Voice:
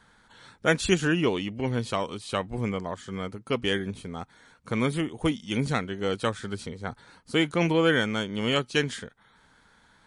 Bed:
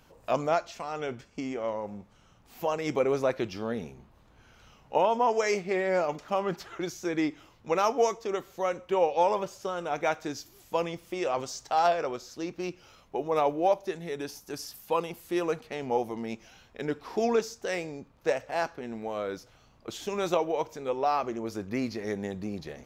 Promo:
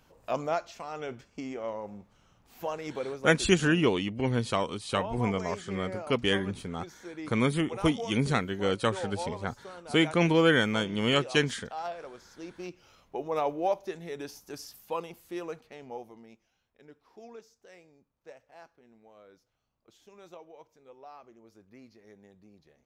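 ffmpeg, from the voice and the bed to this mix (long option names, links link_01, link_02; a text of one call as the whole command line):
ffmpeg -i stem1.wav -i stem2.wav -filter_complex "[0:a]adelay=2600,volume=0dB[link_01];[1:a]volume=5.5dB,afade=type=out:start_time=2.54:duration=0.67:silence=0.354813,afade=type=in:start_time=12.14:duration=0.86:silence=0.354813,afade=type=out:start_time=14.4:duration=2.07:silence=0.11885[link_02];[link_01][link_02]amix=inputs=2:normalize=0" out.wav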